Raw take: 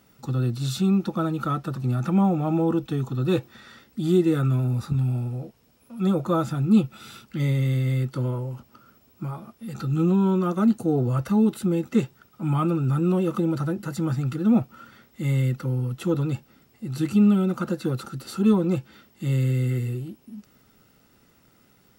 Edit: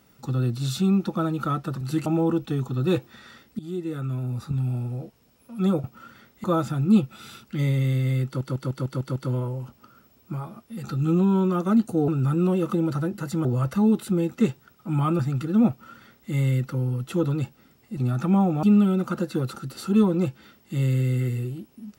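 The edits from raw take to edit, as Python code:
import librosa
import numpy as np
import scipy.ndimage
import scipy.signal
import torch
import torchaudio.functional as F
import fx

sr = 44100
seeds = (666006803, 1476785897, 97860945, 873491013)

y = fx.edit(x, sr, fx.swap(start_s=1.81, length_s=0.66, other_s=16.88, other_length_s=0.25),
    fx.fade_in_from(start_s=4.0, length_s=1.41, floor_db=-16.0),
    fx.stutter(start_s=8.07, slice_s=0.15, count=7),
    fx.move(start_s=12.73, length_s=1.37, to_s=10.99),
    fx.duplicate(start_s=14.61, length_s=0.6, to_s=6.25), tone=tone)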